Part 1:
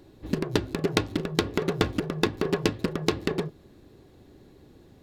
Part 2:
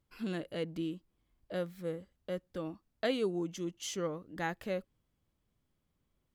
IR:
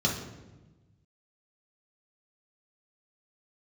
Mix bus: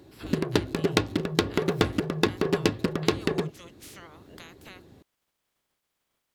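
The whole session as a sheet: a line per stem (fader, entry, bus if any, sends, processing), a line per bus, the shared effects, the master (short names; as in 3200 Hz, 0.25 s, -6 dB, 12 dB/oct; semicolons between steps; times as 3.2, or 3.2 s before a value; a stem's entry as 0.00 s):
+1.0 dB, 0.00 s, no send, HPF 55 Hz
-1.5 dB, 0.00 s, no send, spectral limiter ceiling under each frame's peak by 28 dB; compressor 12:1, threshold -42 dBFS, peak gain reduction 16.5 dB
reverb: off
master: dry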